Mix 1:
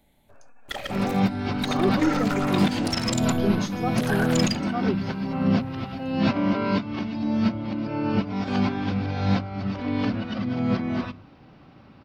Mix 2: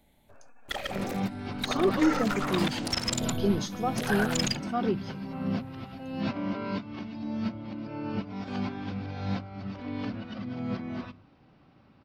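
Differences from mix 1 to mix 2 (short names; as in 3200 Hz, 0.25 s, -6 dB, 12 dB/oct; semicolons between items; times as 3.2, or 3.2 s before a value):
first sound: send -10.5 dB; second sound -9.0 dB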